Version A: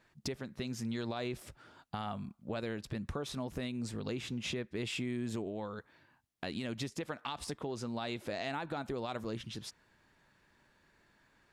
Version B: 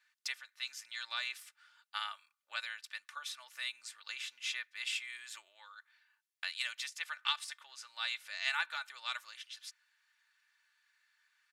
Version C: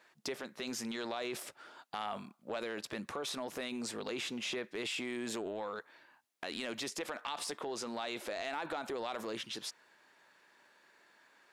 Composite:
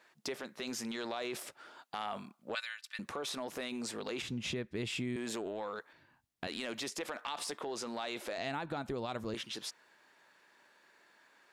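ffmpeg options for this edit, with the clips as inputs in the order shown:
-filter_complex "[0:a]asplit=3[a][b][c];[2:a]asplit=5[d][e][f][g][h];[d]atrim=end=2.552[i];[1:a]atrim=start=2.548:end=2.992[j];[e]atrim=start=2.988:end=4.222[k];[a]atrim=start=4.218:end=5.162[l];[f]atrim=start=5.158:end=5.932[m];[b]atrim=start=5.928:end=6.472[n];[g]atrim=start=6.468:end=8.382[o];[c]atrim=start=8.378:end=9.342[p];[h]atrim=start=9.338[q];[i][j]acrossfade=d=0.004:c1=hsin:c2=hsin[r];[r][k]acrossfade=d=0.004:c1=hsin:c2=hsin[s];[s][l]acrossfade=d=0.004:c1=hsin:c2=hsin[t];[t][m]acrossfade=d=0.004:c1=hsin:c2=hsin[u];[u][n]acrossfade=d=0.004:c1=hsin:c2=hsin[v];[v][o]acrossfade=d=0.004:c1=hsin:c2=hsin[w];[w][p]acrossfade=d=0.004:c1=hsin:c2=hsin[x];[x][q]acrossfade=d=0.004:c1=hsin:c2=hsin"

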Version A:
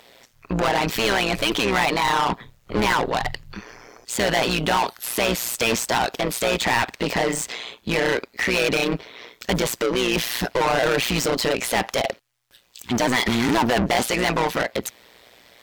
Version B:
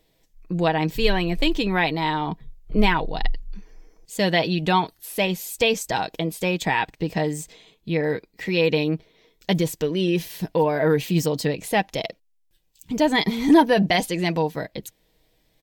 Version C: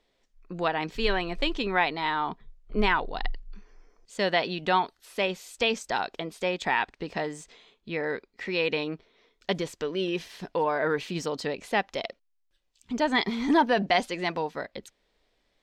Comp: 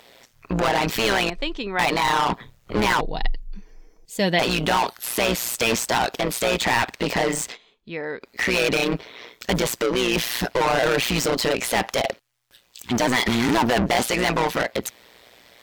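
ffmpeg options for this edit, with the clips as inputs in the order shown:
-filter_complex "[2:a]asplit=2[a][b];[0:a]asplit=4[c][d][e][f];[c]atrim=end=1.302[g];[a]atrim=start=1.298:end=1.792[h];[d]atrim=start=1.788:end=3.012[i];[1:a]atrim=start=3.008:end=4.392[j];[e]atrim=start=4.388:end=7.58[k];[b]atrim=start=7.48:end=8.3[l];[f]atrim=start=8.2[m];[g][h]acrossfade=d=0.004:c1=hsin:c2=hsin[n];[n][i]acrossfade=d=0.004:c1=hsin:c2=hsin[o];[o][j]acrossfade=d=0.004:c1=hsin:c2=hsin[p];[p][k]acrossfade=d=0.004:c1=hsin:c2=hsin[q];[q][l]acrossfade=d=0.1:c1=tri:c2=tri[r];[r][m]acrossfade=d=0.1:c1=tri:c2=tri"

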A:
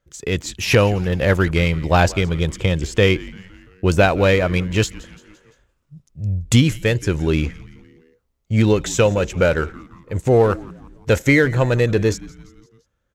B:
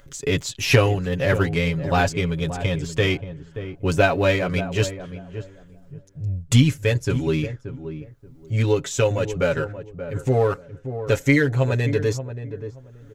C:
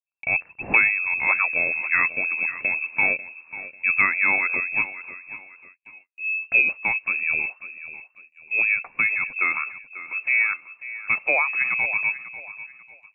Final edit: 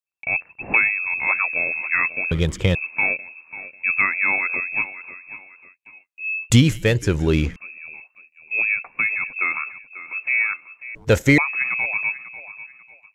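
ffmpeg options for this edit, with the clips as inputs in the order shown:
-filter_complex "[0:a]asplit=3[a][b][c];[2:a]asplit=4[d][e][f][g];[d]atrim=end=2.312[h];[a]atrim=start=2.308:end=2.752[i];[e]atrim=start=2.748:end=6.502[j];[b]atrim=start=6.498:end=7.562[k];[f]atrim=start=7.558:end=10.952[l];[c]atrim=start=10.948:end=11.382[m];[g]atrim=start=11.378[n];[h][i]acrossfade=d=0.004:c1=hsin:c2=hsin[o];[o][j]acrossfade=d=0.004:c1=hsin:c2=hsin[p];[p][k]acrossfade=d=0.004:c1=hsin:c2=hsin[q];[q][l]acrossfade=d=0.004:c1=hsin:c2=hsin[r];[r][m]acrossfade=d=0.004:c1=hsin:c2=hsin[s];[s][n]acrossfade=d=0.004:c1=hsin:c2=hsin"

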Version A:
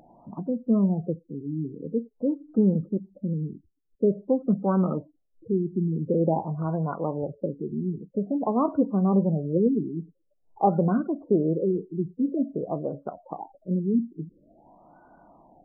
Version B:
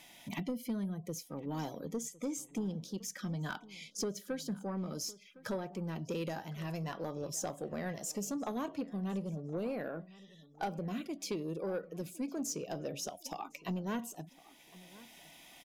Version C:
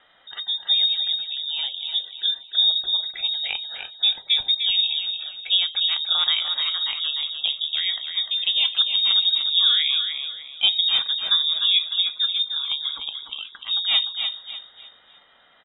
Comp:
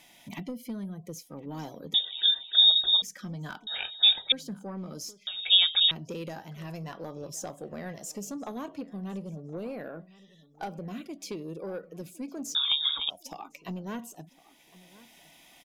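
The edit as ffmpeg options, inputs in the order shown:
-filter_complex "[2:a]asplit=4[a][b][c][d];[1:a]asplit=5[e][f][g][h][i];[e]atrim=end=1.942[j];[a]atrim=start=1.938:end=3.022[k];[f]atrim=start=3.018:end=3.672[l];[b]atrim=start=3.668:end=4.322[m];[g]atrim=start=4.318:end=5.272[n];[c]atrim=start=5.268:end=5.912[o];[h]atrim=start=5.908:end=12.552[p];[d]atrim=start=12.548:end=13.102[q];[i]atrim=start=13.098[r];[j][k]acrossfade=d=0.004:c1=hsin:c2=hsin[s];[s][l]acrossfade=d=0.004:c1=hsin:c2=hsin[t];[t][m]acrossfade=d=0.004:c1=hsin:c2=hsin[u];[u][n]acrossfade=d=0.004:c1=hsin:c2=hsin[v];[v][o]acrossfade=d=0.004:c1=hsin:c2=hsin[w];[w][p]acrossfade=d=0.004:c1=hsin:c2=hsin[x];[x][q]acrossfade=d=0.004:c1=hsin:c2=hsin[y];[y][r]acrossfade=d=0.004:c1=hsin:c2=hsin"

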